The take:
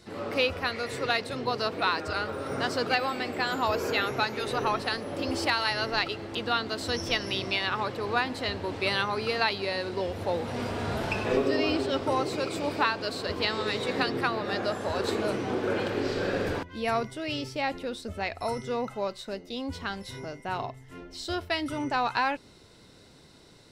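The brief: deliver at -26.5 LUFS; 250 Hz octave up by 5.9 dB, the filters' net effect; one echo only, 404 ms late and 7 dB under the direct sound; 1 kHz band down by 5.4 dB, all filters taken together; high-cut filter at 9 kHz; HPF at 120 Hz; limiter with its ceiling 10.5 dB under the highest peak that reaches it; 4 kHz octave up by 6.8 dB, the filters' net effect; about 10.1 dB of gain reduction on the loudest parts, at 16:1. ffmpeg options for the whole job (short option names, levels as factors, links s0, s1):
-af "highpass=120,lowpass=9000,equalizer=f=250:t=o:g=8,equalizer=f=1000:t=o:g=-8.5,equalizer=f=4000:t=o:g=8.5,acompressor=threshold=0.0398:ratio=16,alimiter=limit=0.0631:level=0:latency=1,aecho=1:1:404:0.447,volume=2.11"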